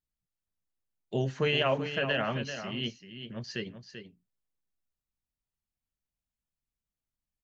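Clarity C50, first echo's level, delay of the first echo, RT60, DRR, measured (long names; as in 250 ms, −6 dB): no reverb audible, −9.5 dB, 388 ms, no reverb audible, no reverb audible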